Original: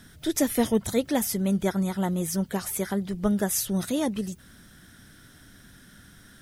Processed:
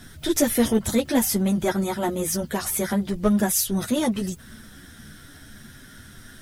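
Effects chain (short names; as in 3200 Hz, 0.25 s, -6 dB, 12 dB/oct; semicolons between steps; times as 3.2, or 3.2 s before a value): chorus voices 6, 0.46 Hz, delay 11 ms, depth 3.3 ms; in parallel at -4.5 dB: overloaded stage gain 31 dB; 3.52–3.95 on the sum: three-band expander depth 40%; gain +5 dB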